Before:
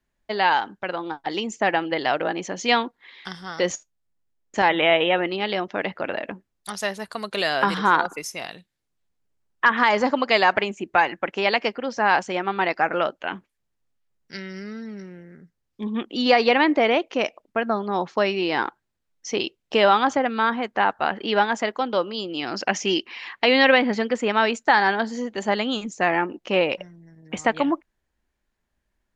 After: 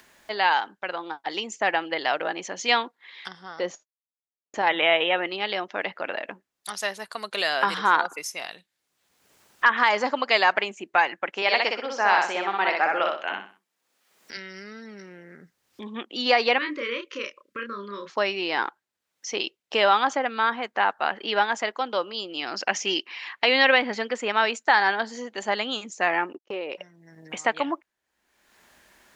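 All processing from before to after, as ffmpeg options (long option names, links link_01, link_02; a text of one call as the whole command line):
ffmpeg -i in.wav -filter_complex "[0:a]asettb=1/sr,asplit=3[link_01][link_02][link_03];[link_01]atrim=end=3.284[link_04];[link_02]atrim=start=3.28:end=4.67,asetpts=PTS-STARTPTS,afade=type=in:duration=0.004:curve=qsin,afade=type=out:start_time=1.386:duration=0.004:curve=qsin,agate=range=-33dB:threshold=-50dB:ratio=3:release=100:detection=peak,lowpass=3700,equalizer=frequency=2400:width=0.71:gain=-8[link_05];[link_03]atrim=start=4.666[link_06];[link_04][link_05]acrossfade=duration=0.004:curve1=hsin:curve2=qsin[link_07];[link_07][link_06]acrossfade=duration=0.004:curve1=qsin:curve2=hsin,asettb=1/sr,asplit=3[link_08][link_09][link_10];[link_08]atrim=end=11.424[link_11];[link_09]atrim=start=11.42:end=14.37,asetpts=PTS-STARTPTS,afade=type=in:duration=0.004:curve=qsin,afade=type=out:start_time=2.946:duration=0.004:curve=qsin,highpass=220,aecho=1:1:62|124|186|248:0.708|0.234|0.0771|0.0254,atrim=end_sample=130095[link_12];[link_10]atrim=start=14.366[link_13];[link_11][link_12]acrossfade=duration=0.004:curve1=hsin:curve2=qsin[link_14];[link_14][link_13]acrossfade=duration=0.004:curve1=qsin:curve2=hsin,asettb=1/sr,asplit=3[link_15][link_16][link_17];[link_15]atrim=end=16.584[link_18];[link_16]atrim=start=16.58:end=18.1,asetpts=PTS-STARTPTS,afade=type=in:duration=0.004:curve=qsin,afade=type=out:start_time=1.516:duration=0.004:curve=qsin,acompressor=threshold=-35dB:ratio=1.5:attack=3.2:release=140:knee=1:detection=peak,asuperstop=centerf=760:order=12:qfactor=1.8,asplit=2[link_19][link_20];[link_20]adelay=30,volume=-4dB[link_21];[link_19][link_21]amix=inputs=2:normalize=0,atrim=end_sample=67032[link_22];[link_17]atrim=start=18.096[link_23];[link_18][link_22]acrossfade=duration=0.004:curve1=hsin:curve2=qsin[link_24];[link_24][link_23]acrossfade=duration=0.004:curve1=qsin:curve2=hsin,asettb=1/sr,asplit=3[link_25][link_26][link_27];[link_25]atrim=end=26.334[link_28];[link_26]atrim=start=26.33:end=26.76,asetpts=PTS-STARTPTS,afade=type=in:duration=0.004:curve=qsin,afade=type=out:start_time=0.426:duration=0.004:curve=qsin,equalizer=frequency=390:width=1.8:gain=12,agate=range=-33dB:threshold=-30dB:ratio=16:release=100:detection=peak,acompressor=threshold=-28dB:ratio=3:attack=3.2:release=140:knee=1:detection=peak[link_29];[link_27]atrim=start=26.756[link_30];[link_28][link_29]acrossfade=duration=0.004:curve1=hsin:curve2=qsin[link_31];[link_31][link_30]acrossfade=duration=0.004:curve1=qsin:curve2=hsin,highpass=frequency=690:poles=1,acompressor=mode=upward:threshold=-36dB:ratio=2.5" out.wav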